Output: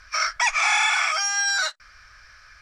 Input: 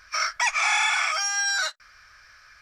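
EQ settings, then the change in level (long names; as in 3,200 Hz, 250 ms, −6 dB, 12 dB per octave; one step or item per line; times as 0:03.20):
low-pass filter 11,000 Hz 12 dB per octave
low-shelf EQ 87 Hz +9.5 dB
+2.0 dB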